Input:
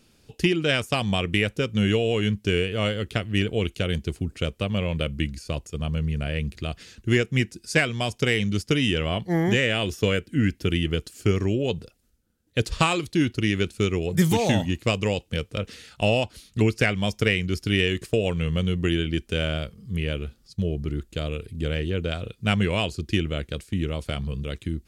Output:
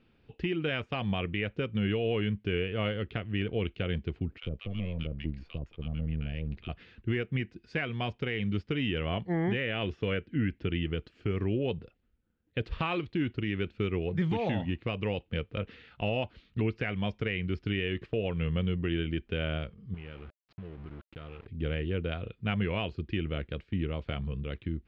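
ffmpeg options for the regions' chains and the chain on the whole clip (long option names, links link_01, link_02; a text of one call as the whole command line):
ffmpeg -i in.wav -filter_complex "[0:a]asettb=1/sr,asplit=3[link_01][link_02][link_03];[link_01]atrim=end=4.384[link_04];[link_02]atrim=start=4.38:end=6.69,asetpts=PTS-STARTPTS,afade=type=in:duration=0.004:curve=qsin,afade=type=out:start_time=2.306:duration=0.004:curve=qsin,aeval=exprs='if(lt(val(0),0),0.447*val(0),val(0))':channel_layout=same,acrossover=split=380|3000[link_05][link_06][link_07];[link_06]acompressor=threshold=-47dB:ratio=2:attack=3.2:release=140:knee=2.83:detection=peak[link_08];[link_05][link_08][link_07]amix=inputs=3:normalize=0,acrossover=split=1000[link_09][link_10];[link_09]adelay=50[link_11];[link_11][link_10]amix=inputs=2:normalize=0,atrim=end_sample=101871[link_12];[link_03]atrim=start=6.686[link_13];[link_04][link_12]acrossfade=duration=0.004:curve1=hsin:curve2=qsin[link_14];[link_14][link_13]acrossfade=duration=0.004:curve1=qsin:curve2=hsin,asettb=1/sr,asplit=3[link_15][link_16][link_17];[link_15]atrim=end=19.944[link_18];[link_16]atrim=start=19.94:end=21.47,asetpts=PTS-STARTPTS,afade=type=in:duration=0.004:curve=qsin,afade=type=out:start_time=1.526:duration=0.004:curve=qsin,equalizer=frequency=1300:width=4.4:gain=8.5,acompressor=threshold=-36dB:ratio=4:attack=3.2:release=140:knee=1:detection=peak,aeval=exprs='val(0)*gte(abs(val(0)),0.00708)':channel_layout=same[link_19];[link_17]atrim=start=21.466[link_20];[link_18][link_19]acrossfade=duration=0.004:curve1=hsin:curve2=qsin[link_21];[link_21][link_20]acrossfade=duration=0.004:curve1=qsin:curve2=hsin,lowpass=frequency=3000:width=0.5412,lowpass=frequency=3000:width=1.3066,bandreject=frequency=600:width=17,alimiter=limit=-15.5dB:level=0:latency=1:release=126,volume=-5dB" out.wav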